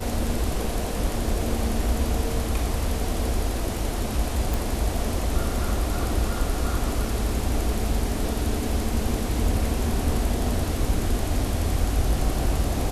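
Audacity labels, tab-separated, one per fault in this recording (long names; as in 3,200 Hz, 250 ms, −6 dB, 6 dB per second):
4.540000	4.540000	click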